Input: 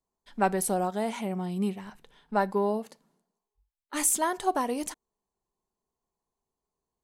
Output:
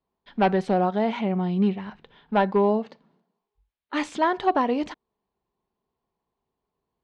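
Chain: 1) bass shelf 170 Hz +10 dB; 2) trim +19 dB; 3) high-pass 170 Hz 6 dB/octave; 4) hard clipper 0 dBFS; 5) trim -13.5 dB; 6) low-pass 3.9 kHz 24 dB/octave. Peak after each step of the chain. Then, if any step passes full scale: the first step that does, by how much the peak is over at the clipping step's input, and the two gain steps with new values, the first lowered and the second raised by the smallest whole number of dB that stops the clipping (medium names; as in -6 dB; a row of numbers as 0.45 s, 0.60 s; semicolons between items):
-11.0 dBFS, +8.0 dBFS, +8.0 dBFS, 0.0 dBFS, -13.5 dBFS, -12.0 dBFS; step 2, 8.0 dB; step 2 +11 dB, step 5 -5.5 dB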